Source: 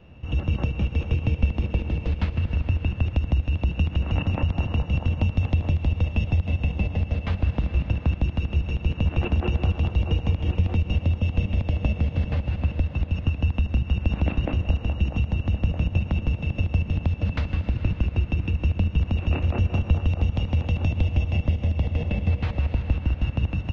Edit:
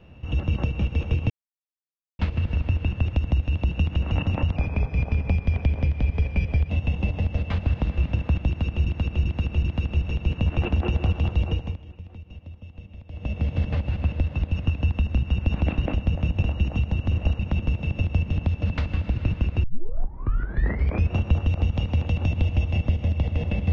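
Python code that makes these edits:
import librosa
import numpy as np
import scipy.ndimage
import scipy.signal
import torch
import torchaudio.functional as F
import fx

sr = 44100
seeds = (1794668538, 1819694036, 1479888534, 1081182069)

y = fx.edit(x, sr, fx.silence(start_s=1.3, length_s=0.89),
    fx.speed_span(start_s=4.56, length_s=1.9, speed=0.89),
    fx.repeat(start_s=8.24, length_s=0.39, count=4),
    fx.fade_down_up(start_s=10.02, length_s=2.08, db=-18.5, fade_s=0.42),
    fx.swap(start_s=14.55, length_s=0.28, other_s=15.52, other_length_s=0.47),
    fx.tape_start(start_s=18.23, length_s=1.49), tone=tone)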